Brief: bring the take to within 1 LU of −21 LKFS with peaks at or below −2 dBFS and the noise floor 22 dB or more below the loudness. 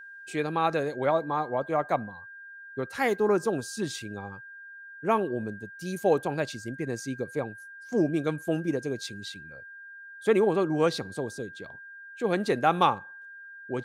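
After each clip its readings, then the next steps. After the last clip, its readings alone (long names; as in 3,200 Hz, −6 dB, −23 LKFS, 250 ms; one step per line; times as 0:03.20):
interfering tone 1,600 Hz; level of the tone −43 dBFS; integrated loudness −28.5 LKFS; sample peak −7.5 dBFS; target loudness −21.0 LKFS
→ notch filter 1,600 Hz, Q 30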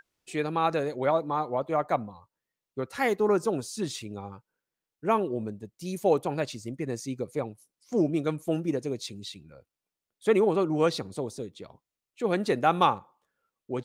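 interfering tone none found; integrated loudness −28.5 LKFS; sample peak −7.5 dBFS; target loudness −21.0 LKFS
→ level +7.5 dB
brickwall limiter −2 dBFS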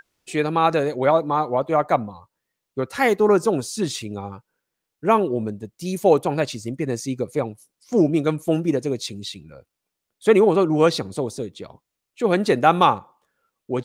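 integrated loudness −21.0 LKFS; sample peak −2.0 dBFS; background noise floor −82 dBFS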